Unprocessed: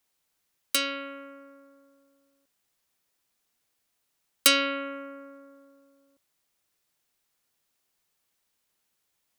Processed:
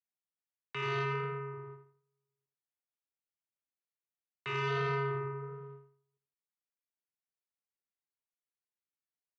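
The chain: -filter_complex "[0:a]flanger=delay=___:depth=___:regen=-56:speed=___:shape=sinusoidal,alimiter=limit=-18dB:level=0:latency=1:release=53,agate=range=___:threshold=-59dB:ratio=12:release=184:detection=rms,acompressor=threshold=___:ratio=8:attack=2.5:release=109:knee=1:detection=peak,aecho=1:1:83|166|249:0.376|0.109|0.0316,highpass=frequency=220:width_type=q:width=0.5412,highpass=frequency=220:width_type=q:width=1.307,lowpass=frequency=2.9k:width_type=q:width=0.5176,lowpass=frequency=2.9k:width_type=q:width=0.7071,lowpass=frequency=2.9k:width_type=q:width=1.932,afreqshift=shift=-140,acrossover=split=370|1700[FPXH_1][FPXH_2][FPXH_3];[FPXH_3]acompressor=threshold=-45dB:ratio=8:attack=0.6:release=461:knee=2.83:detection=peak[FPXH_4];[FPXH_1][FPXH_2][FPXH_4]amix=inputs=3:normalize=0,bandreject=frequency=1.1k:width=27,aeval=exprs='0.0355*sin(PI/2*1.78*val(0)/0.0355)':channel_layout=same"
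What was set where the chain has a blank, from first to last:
3, 9, 1.4, -28dB, -36dB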